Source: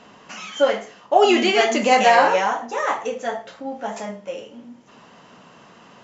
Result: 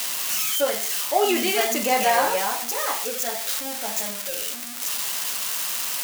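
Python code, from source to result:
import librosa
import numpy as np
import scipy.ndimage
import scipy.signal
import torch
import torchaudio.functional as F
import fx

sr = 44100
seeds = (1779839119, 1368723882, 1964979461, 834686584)

y = x + 0.5 * 10.0 ** (-9.5 / 20.0) * np.diff(np.sign(x), prepend=np.sign(x[:1]))
y = y * librosa.db_to_amplitude(-6.0)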